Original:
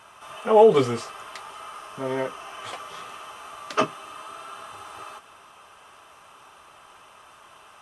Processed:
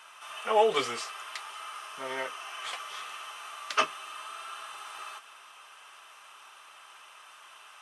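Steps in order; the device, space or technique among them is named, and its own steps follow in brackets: filter by subtraction (in parallel: LPF 2300 Hz 12 dB/oct + phase invert)

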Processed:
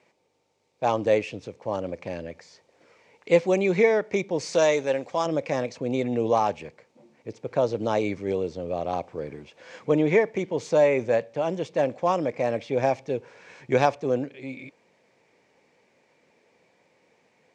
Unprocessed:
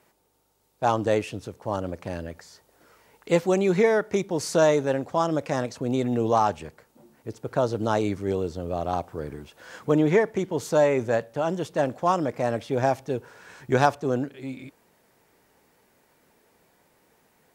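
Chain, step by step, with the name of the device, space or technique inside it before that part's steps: 4.53–5.26 tilt +2 dB/oct; car door speaker (speaker cabinet 110–6900 Hz, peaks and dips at 520 Hz +6 dB, 1400 Hz -6 dB, 2300 Hz +9 dB); gain -2 dB

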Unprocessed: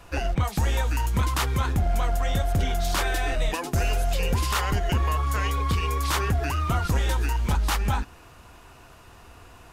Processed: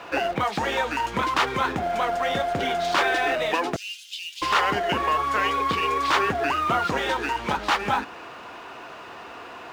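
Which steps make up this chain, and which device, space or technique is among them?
phone line with mismatched companding (BPF 320–3400 Hz; G.711 law mismatch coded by mu); 3.76–4.42 Chebyshev high-pass 3000 Hz, order 4; gain +6 dB

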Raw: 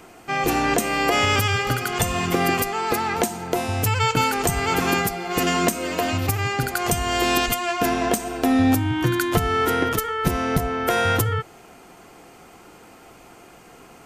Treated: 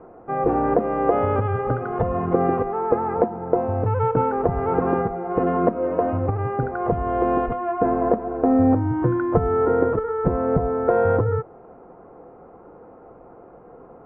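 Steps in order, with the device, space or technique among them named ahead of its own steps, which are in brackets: under water (LPF 1200 Hz 24 dB/oct; bell 500 Hz +9 dB 0.46 oct)

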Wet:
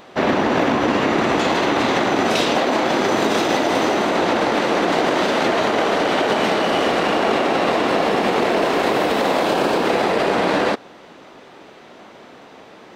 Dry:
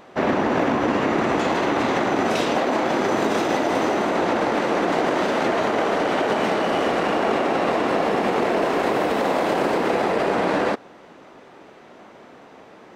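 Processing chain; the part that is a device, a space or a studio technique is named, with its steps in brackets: 9.43–9.87 notch 2000 Hz, Q 10; presence and air boost (bell 3800 Hz +5.5 dB 1.2 oct; high shelf 10000 Hz +5 dB); gain +2.5 dB

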